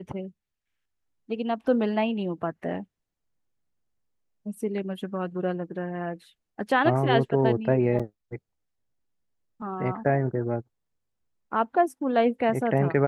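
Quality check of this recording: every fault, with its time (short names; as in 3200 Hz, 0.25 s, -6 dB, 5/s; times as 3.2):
7.99–8 gap 6.1 ms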